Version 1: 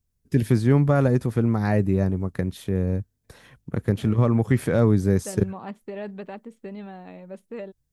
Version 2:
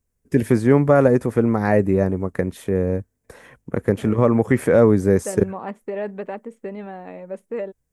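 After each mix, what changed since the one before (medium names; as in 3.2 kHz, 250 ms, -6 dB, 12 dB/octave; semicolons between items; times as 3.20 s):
master: add graphic EQ 125/250/500/1000/2000/4000/8000 Hz -3/+3/+8/+4/+6/-6/+5 dB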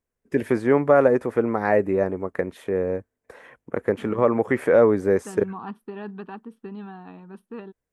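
first voice: add tone controls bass -13 dB, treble -11 dB; second voice: add static phaser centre 2.1 kHz, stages 6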